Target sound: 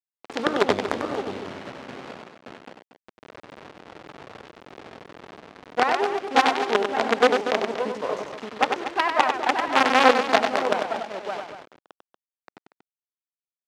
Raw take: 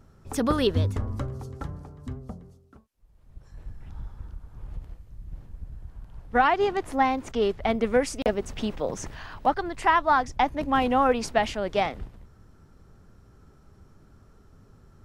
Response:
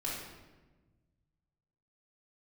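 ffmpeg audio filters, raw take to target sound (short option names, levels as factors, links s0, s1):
-filter_complex "[0:a]tiltshelf=f=970:g=6,atempo=1.1,asplit=2[s0][s1];[s1]aecho=0:1:574:0.596[s2];[s0][s2]amix=inputs=2:normalize=0,acrusher=bits=3:dc=4:mix=0:aa=0.000001,highpass=360,lowpass=3800,asplit=2[s3][s4];[s4]aecho=0:1:96.21|236.2:0.501|0.282[s5];[s3][s5]amix=inputs=2:normalize=0,volume=1.19"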